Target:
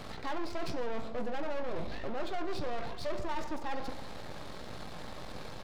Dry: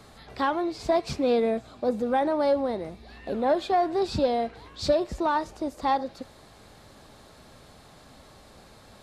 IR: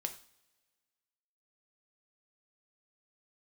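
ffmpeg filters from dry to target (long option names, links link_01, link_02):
-filter_complex "[0:a]areverse,acompressor=threshold=-33dB:ratio=12,areverse,aeval=exprs='max(val(0),0)':channel_layout=same,asplit=2[link_01][link_02];[link_02]adelay=226,lowpass=frequency=1500:poles=1,volume=-16.5dB,asplit=2[link_03][link_04];[link_04]adelay=226,lowpass=frequency=1500:poles=1,volume=0.54,asplit=2[link_05][link_06];[link_06]adelay=226,lowpass=frequency=1500:poles=1,volume=0.54,asplit=2[link_07][link_08];[link_08]adelay=226,lowpass=frequency=1500:poles=1,volume=0.54,asplit=2[link_09][link_10];[link_10]adelay=226,lowpass=frequency=1500:poles=1,volume=0.54[link_11];[link_01][link_03][link_05][link_07][link_09][link_11]amix=inputs=6:normalize=0,atempo=1.6,asplit=2[link_12][link_13];[1:a]atrim=start_sample=2205,lowpass=5800[link_14];[link_13][link_14]afir=irnorm=-1:irlink=0,volume=2.5dB[link_15];[link_12][link_15]amix=inputs=2:normalize=0,asoftclip=type=tanh:threshold=-31.5dB,volume=5dB"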